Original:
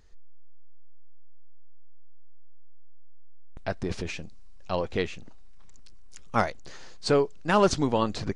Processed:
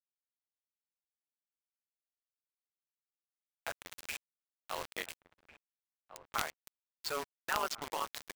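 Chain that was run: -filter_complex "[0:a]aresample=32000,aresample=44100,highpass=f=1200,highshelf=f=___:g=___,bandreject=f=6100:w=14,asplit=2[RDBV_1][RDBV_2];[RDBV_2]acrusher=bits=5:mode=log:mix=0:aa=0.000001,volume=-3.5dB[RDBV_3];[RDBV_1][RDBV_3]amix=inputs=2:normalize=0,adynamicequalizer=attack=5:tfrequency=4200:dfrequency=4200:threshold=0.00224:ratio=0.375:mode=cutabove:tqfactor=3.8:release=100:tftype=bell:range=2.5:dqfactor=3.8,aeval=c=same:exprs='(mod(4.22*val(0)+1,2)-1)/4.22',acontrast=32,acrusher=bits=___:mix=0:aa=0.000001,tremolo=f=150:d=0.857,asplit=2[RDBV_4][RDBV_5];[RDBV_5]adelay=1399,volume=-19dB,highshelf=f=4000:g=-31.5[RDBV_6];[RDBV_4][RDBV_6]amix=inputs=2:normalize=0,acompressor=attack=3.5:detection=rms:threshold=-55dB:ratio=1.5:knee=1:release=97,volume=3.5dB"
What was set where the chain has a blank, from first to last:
2500, -8.5, 4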